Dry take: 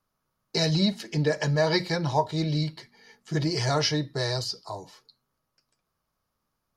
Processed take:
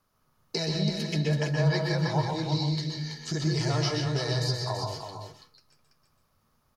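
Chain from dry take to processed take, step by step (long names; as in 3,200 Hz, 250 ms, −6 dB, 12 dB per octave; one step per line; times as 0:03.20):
0:02.48–0:03.43: flat-topped bell 5,400 Hz +8 dB 1.2 octaves
downward compressor 4 to 1, threshold −36 dBFS, peak gain reduction 15.5 dB
single-tap delay 331 ms −6.5 dB
convolution reverb RT60 0.35 s, pre-delay 121 ms, DRR 2.5 dB
level +5.5 dB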